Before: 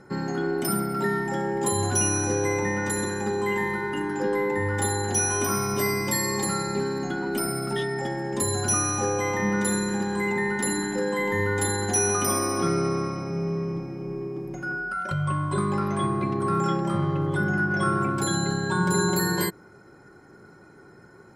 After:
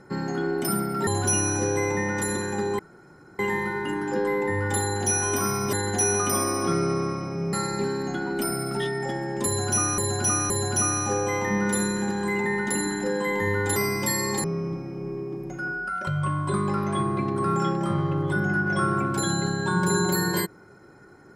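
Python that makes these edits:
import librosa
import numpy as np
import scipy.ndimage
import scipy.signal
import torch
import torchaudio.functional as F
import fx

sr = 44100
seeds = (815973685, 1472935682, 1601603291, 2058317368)

y = fx.edit(x, sr, fx.cut(start_s=1.07, length_s=0.68),
    fx.insert_room_tone(at_s=3.47, length_s=0.6),
    fx.swap(start_s=5.81, length_s=0.68, other_s=11.68, other_length_s=1.8),
    fx.repeat(start_s=8.42, length_s=0.52, count=3), tone=tone)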